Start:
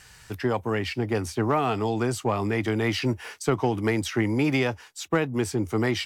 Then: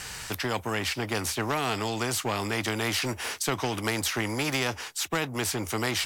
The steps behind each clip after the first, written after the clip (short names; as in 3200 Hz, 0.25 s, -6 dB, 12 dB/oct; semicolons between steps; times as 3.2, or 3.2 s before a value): spectral compressor 2:1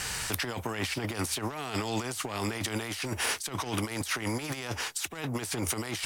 dynamic EQ 9400 Hz, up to +6 dB, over -51 dBFS, Q 3.5; negative-ratio compressor -32 dBFS, ratio -0.5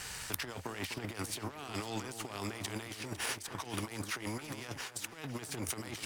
power-law curve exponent 1.4; echo with dull and thin repeats by turns 0.251 s, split 1700 Hz, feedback 59%, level -9.5 dB; gain -1 dB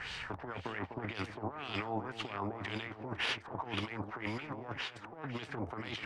LFO low-pass sine 1.9 Hz 740–3500 Hz